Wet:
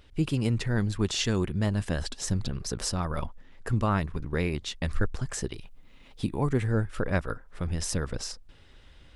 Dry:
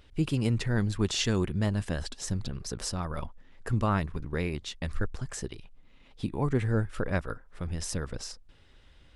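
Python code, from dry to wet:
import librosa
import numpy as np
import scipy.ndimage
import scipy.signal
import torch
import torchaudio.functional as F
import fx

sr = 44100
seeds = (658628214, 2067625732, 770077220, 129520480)

p1 = fx.high_shelf(x, sr, hz=9600.0, db=9.0, at=(5.54, 6.67))
p2 = fx.rider(p1, sr, range_db=4, speed_s=0.5)
p3 = p1 + (p2 * 10.0 ** (-1.5 / 20.0))
y = p3 * 10.0 ** (-3.5 / 20.0)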